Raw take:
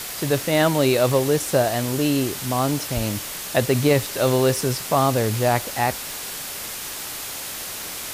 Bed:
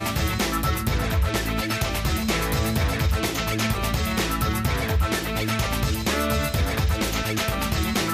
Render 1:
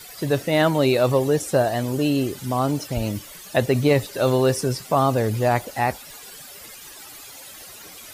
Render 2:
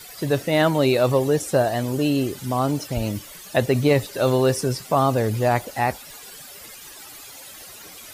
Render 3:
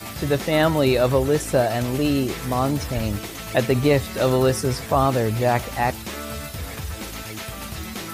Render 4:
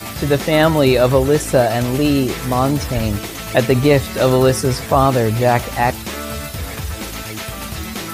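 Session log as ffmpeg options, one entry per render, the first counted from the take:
-af "afftdn=nr=14:nf=-32"
-af anull
-filter_complex "[1:a]volume=-9dB[a];[0:a][a]amix=inputs=2:normalize=0"
-af "volume=5.5dB,alimiter=limit=-2dB:level=0:latency=1"

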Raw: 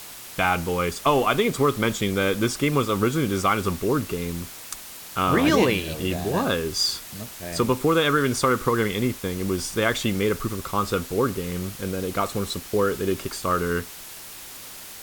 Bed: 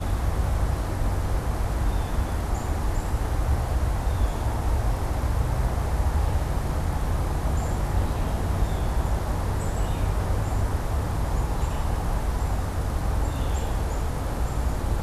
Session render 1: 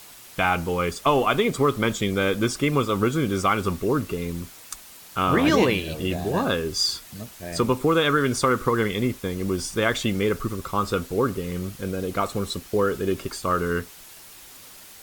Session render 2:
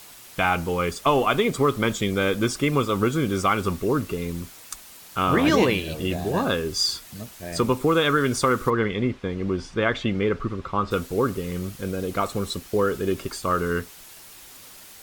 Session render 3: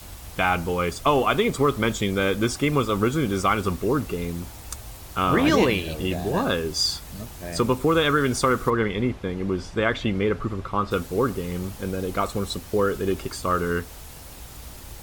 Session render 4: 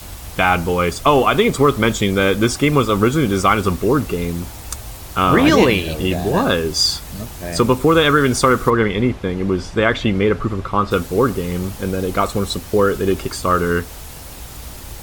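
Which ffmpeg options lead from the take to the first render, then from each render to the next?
-af "afftdn=nr=6:nf=-40"
-filter_complex "[0:a]asplit=3[a][b][c];[a]afade=t=out:st=8.69:d=0.02[d];[b]lowpass=3.1k,afade=t=in:st=8.69:d=0.02,afade=t=out:st=10.9:d=0.02[e];[c]afade=t=in:st=10.9:d=0.02[f];[d][e][f]amix=inputs=3:normalize=0"
-filter_complex "[1:a]volume=-16.5dB[a];[0:a][a]amix=inputs=2:normalize=0"
-af "volume=7dB,alimiter=limit=-1dB:level=0:latency=1"

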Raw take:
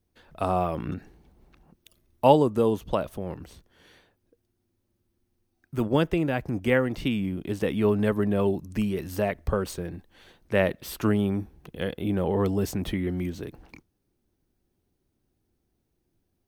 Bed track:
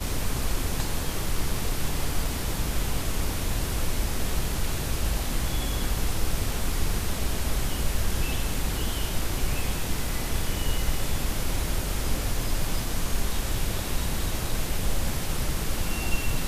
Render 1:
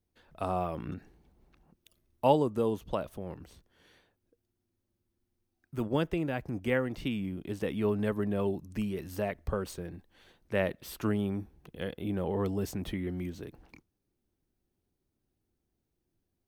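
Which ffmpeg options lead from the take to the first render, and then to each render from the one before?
-af "volume=-6.5dB"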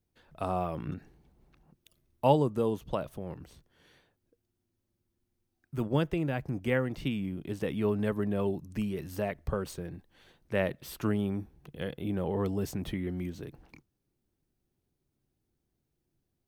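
-af "equalizer=f=140:w=4.1:g=6.5"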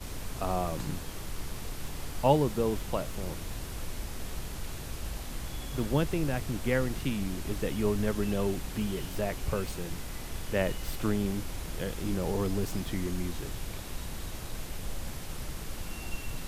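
-filter_complex "[1:a]volume=-10.5dB[a];[0:a][a]amix=inputs=2:normalize=0"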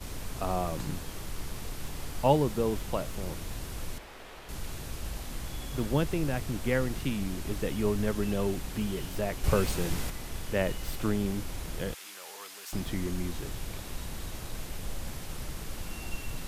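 -filter_complex "[0:a]asettb=1/sr,asplit=3[a][b][c];[a]atrim=end=3.984[d];[b]atrim=start=3.98:end=4.49,asetpts=PTS-STARTPTS,afade=t=in:d=0.004:c=qsin,afade=t=out:st=0.506:d=0.004:c=qsin,acrossover=split=360 3700:gain=0.158 1 0.224[e][f][g];[e][f][g]amix=inputs=3:normalize=0[h];[c]atrim=start=4.486[i];[d][h]acrossfade=d=0.004:c1=hsin:c2=qsin[j];[j][i]acrossfade=d=0.004:c1=qsin:c2=hsin,asettb=1/sr,asplit=3[k][l][m];[k]atrim=end=11.944[n];[l]atrim=start=11.94:end=12.73,asetpts=PTS-STARTPTS,afade=t=in:d=0.004:c=qsin,afade=t=out:st=0.786:d=0.004:c=qsin,highpass=1.4k[o];[m]atrim=start=12.726[p];[n][o]acrossfade=d=0.004:c1=hsin:c2=qsin[q];[q][p]acrossfade=d=0.004:c1=qsin:c2=hsin,asplit=3[r][s][t];[r]atrim=end=9.442[u];[s]atrim=start=9.438:end=10.102,asetpts=PTS-STARTPTS,volume=6dB[v];[t]atrim=start=10.098[w];[u][v]acrossfade=d=0.004:c1=hsin:c2=hsin[x];[x][w]acrossfade=d=0.004:c1=hsin:c2=hsin"

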